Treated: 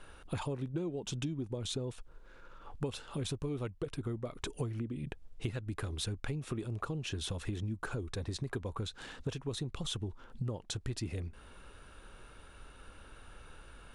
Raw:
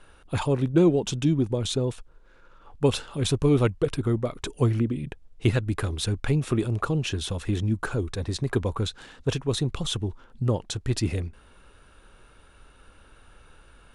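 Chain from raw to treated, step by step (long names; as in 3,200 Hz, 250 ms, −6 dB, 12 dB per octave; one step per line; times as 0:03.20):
downward compressor 10 to 1, threshold −34 dBFS, peak gain reduction 19.5 dB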